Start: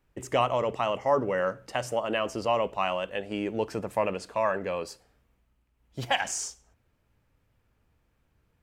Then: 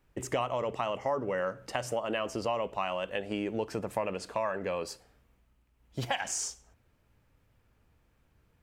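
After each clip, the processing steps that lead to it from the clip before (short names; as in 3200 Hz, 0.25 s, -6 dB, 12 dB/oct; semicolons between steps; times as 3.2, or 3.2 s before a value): compressor 3:1, threshold -32 dBFS, peak gain reduction 10.5 dB; gain +2 dB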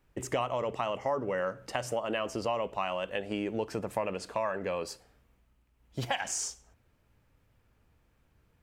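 nothing audible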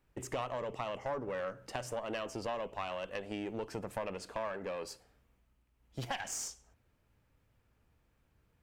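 one diode to ground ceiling -29.5 dBFS; gain -4 dB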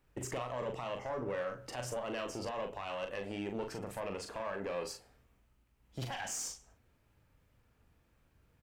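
limiter -31.5 dBFS, peak gain reduction 10 dB; doubler 40 ms -5.5 dB; gain +1.5 dB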